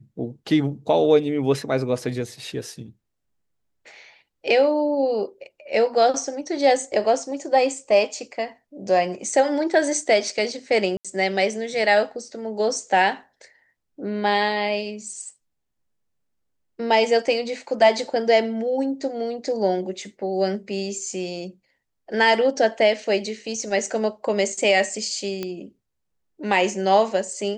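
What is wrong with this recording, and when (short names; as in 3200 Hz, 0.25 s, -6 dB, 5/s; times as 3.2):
10.97–11.05 gap 76 ms
25.43 pop -14 dBFS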